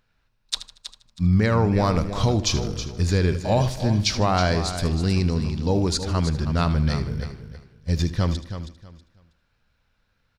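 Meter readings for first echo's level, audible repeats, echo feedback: -13.5 dB, 7, no steady repeat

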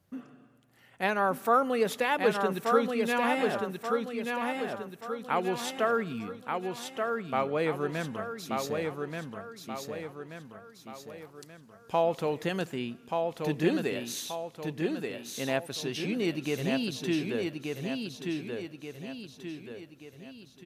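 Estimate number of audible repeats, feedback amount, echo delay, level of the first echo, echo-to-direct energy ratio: 5, 46%, 1.181 s, -4.0 dB, -3.0 dB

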